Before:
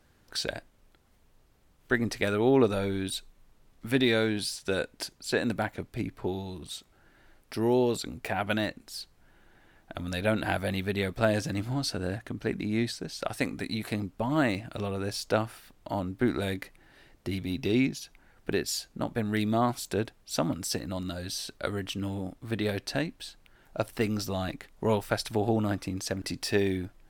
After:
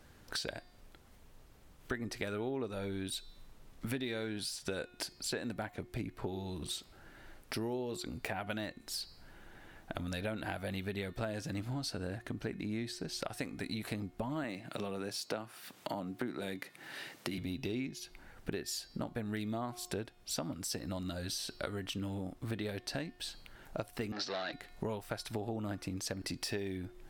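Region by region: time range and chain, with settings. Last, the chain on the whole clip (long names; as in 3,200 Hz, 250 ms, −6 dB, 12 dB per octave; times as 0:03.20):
0:14.44–0:17.38: high-pass filter 130 Hz 24 dB per octave + one half of a high-frequency compander encoder only
0:24.12–0:24.53: leveller curve on the samples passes 3 + loudspeaker in its box 410–5,100 Hz, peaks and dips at 1,000 Hz −3 dB, 1,700 Hz +7 dB, 4,100 Hz +7 dB + multiband upward and downward expander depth 40%
whole clip: hum removal 359.7 Hz, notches 15; downward compressor 6 to 1, threshold −41 dBFS; level +4.5 dB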